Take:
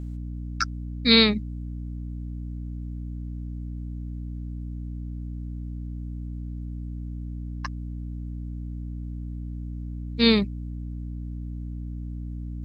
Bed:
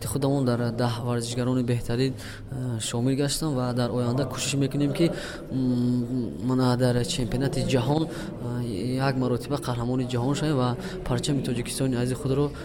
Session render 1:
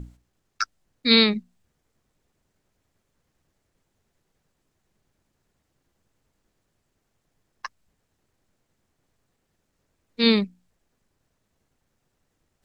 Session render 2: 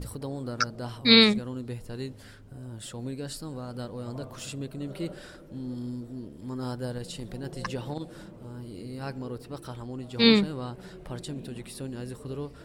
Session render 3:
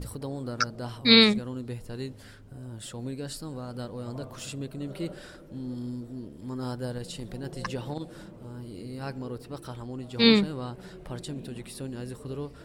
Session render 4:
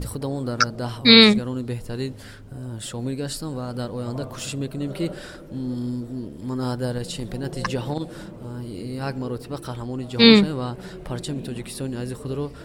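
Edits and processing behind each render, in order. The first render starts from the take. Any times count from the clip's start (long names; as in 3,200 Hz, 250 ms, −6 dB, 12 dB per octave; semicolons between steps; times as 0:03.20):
mains-hum notches 60/120/180/240/300 Hz
mix in bed −11.5 dB
no processing that can be heard
level +7.5 dB; brickwall limiter −1 dBFS, peak gain reduction 3 dB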